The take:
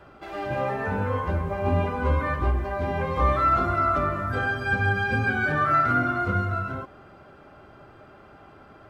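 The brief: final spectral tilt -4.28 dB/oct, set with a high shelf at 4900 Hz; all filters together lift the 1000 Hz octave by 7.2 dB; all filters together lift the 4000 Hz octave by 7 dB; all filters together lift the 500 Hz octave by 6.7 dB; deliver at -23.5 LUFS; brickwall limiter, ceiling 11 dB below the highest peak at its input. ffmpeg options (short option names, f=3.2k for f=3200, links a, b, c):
-af "equalizer=f=500:t=o:g=5.5,equalizer=f=1k:t=o:g=8.5,equalizer=f=4k:t=o:g=7,highshelf=f=4.9k:g=4,volume=0.5dB,alimiter=limit=-15.5dB:level=0:latency=1"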